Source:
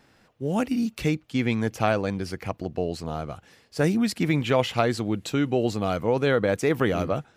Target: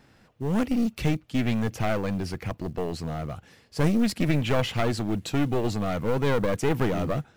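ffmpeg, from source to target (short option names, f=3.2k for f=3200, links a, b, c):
-af "acrusher=bits=7:mode=log:mix=0:aa=0.000001,aeval=exprs='clip(val(0),-1,0.0422)':c=same,bass=f=250:g=5,treble=f=4k:g=-1"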